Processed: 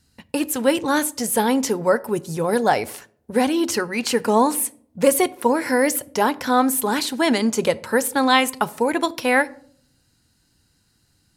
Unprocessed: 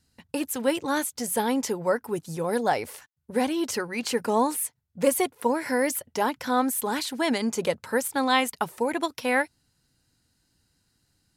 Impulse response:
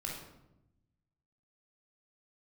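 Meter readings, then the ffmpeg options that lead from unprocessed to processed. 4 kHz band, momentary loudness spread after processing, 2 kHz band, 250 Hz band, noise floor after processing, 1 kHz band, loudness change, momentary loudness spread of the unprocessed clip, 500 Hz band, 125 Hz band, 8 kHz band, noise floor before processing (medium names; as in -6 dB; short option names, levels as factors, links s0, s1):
+6.0 dB, 6 LU, +6.0 dB, +6.5 dB, -64 dBFS, +6.0 dB, +6.0 dB, 6 LU, +6.0 dB, +6.5 dB, +6.0 dB, -72 dBFS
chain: -filter_complex "[0:a]asplit=2[s0][s1];[1:a]atrim=start_sample=2205,asetrate=88200,aresample=44100[s2];[s1][s2]afir=irnorm=-1:irlink=0,volume=0.282[s3];[s0][s3]amix=inputs=2:normalize=0,volume=1.88"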